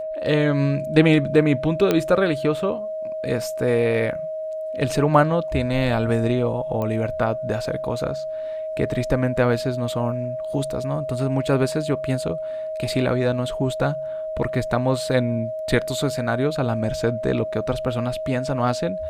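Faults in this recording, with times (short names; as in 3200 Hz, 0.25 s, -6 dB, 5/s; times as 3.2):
tone 630 Hz -26 dBFS
1.91 pop -6 dBFS
6.82 pop -16 dBFS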